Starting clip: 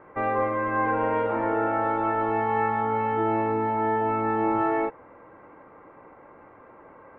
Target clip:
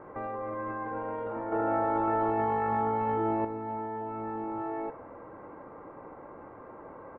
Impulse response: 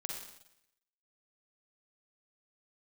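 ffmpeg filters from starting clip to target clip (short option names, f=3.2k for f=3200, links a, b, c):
-filter_complex "[0:a]equalizer=f=2.4k:t=o:w=1.4:g=-8.5,alimiter=level_in=8.5dB:limit=-24dB:level=0:latency=1:release=10,volume=-8.5dB,asettb=1/sr,asplit=3[a][b][c];[a]atrim=end=1.524[d];[b]atrim=start=1.52:end=3.45,asetpts=PTS-STARTPTS,afade=t=in:d=0.004:c=qsin,afade=t=out:st=1.926:d=0.004:c=qsin,acontrast=86[e];[c]atrim=start=3.446[f];[d][e]acrossfade=d=0.004:c1=hsin:c2=qsin[g];[g][f]acrossfade=d=0.004:c1=qsin:c2=hsin,asplit=2[h][i];[1:a]atrim=start_sample=2205,asetrate=37926,aresample=44100,lowpass=3.2k[j];[i][j]afir=irnorm=-1:irlink=0,volume=-12.5dB[k];[h][k]amix=inputs=2:normalize=0,aresample=11025,aresample=44100,volume=2.5dB"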